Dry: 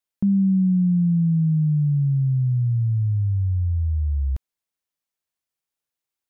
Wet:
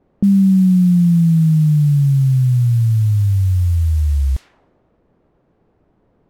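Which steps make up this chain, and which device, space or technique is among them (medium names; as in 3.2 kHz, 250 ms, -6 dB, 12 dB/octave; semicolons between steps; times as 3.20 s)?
cassette deck with a dynamic noise filter (white noise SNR 29 dB; level-controlled noise filter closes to 380 Hz, open at -19 dBFS); trim +7 dB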